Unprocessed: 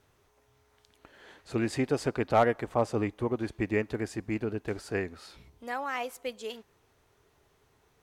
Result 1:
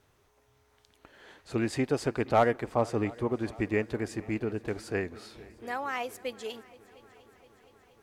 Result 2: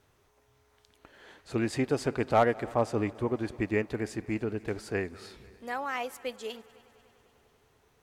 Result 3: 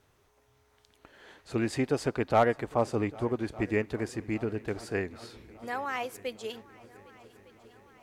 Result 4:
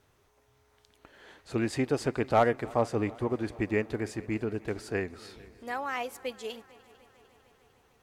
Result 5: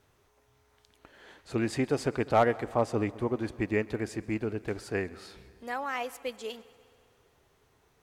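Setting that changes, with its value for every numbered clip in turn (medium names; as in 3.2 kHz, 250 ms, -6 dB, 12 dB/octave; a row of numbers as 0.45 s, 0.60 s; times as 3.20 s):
multi-head delay, time: 235 ms, 99 ms, 402 ms, 150 ms, 67 ms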